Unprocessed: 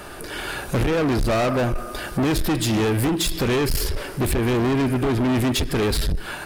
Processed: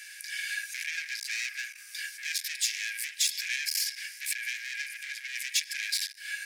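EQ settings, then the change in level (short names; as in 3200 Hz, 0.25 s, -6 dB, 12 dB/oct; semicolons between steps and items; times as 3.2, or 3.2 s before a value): rippled Chebyshev high-pass 1600 Hz, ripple 9 dB; +3.0 dB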